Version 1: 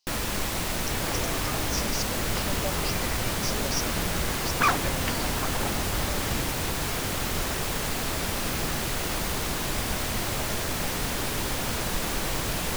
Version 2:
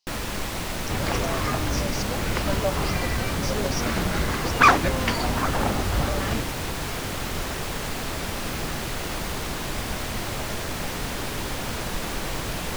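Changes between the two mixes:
second sound +8.0 dB
master: add high-shelf EQ 6,300 Hz −5.5 dB

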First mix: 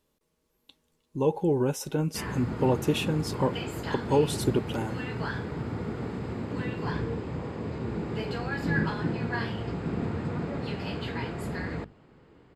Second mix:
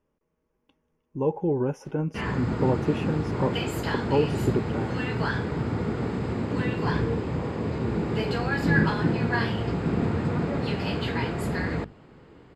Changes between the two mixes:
speech: add moving average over 11 samples
background +5.5 dB

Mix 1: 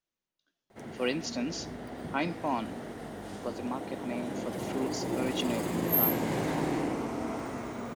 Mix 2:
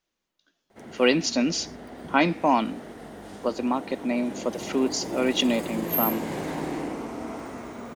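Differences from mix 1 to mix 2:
speech +10.5 dB
master: add parametric band 120 Hz −7.5 dB 0.41 octaves

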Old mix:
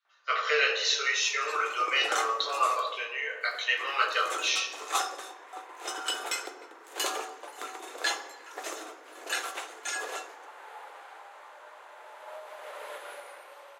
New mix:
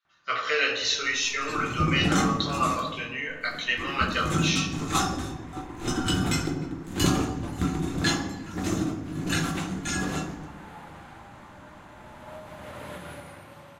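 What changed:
second sound: send +6.0 dB
master: remove elliptic high-pass filter 430 Hz, stop band 60 dB

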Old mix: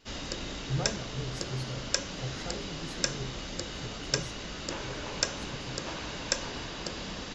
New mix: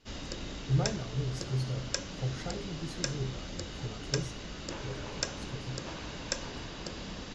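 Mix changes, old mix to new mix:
background −5.0 dB
master: add low-shelf EQ 330 Hz +5 dB

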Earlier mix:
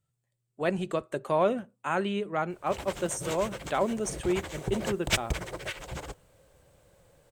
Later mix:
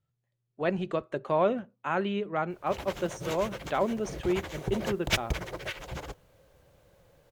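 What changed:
speech: add high-frequency loss of the air 82 metres
master: add parametric band 8,200 Hz −11 dB 0.34 octaves

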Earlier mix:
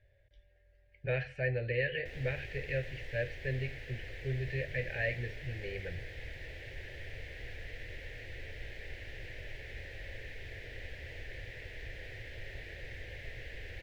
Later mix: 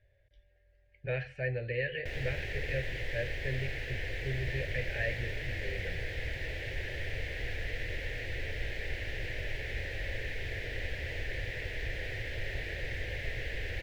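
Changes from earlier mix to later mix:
background +10.0 dB
reverb: off

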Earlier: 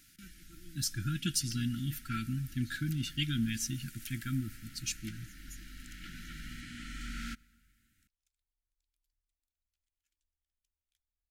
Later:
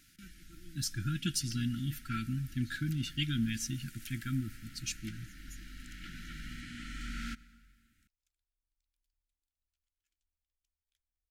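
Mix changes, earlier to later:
first sound: send +7.5 dB
master: add high-shelf EQ 7,100 Hz −5 dB

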